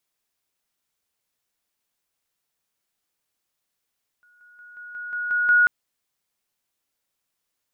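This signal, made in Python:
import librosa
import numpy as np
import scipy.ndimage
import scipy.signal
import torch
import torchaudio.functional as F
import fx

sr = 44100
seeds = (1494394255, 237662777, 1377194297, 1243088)

y = fx.level_ladder(sr, hz=1450.0, from_db=-55.0, step_db=6.0, steps=8, dwell_s=0.18, gap_s=0.0)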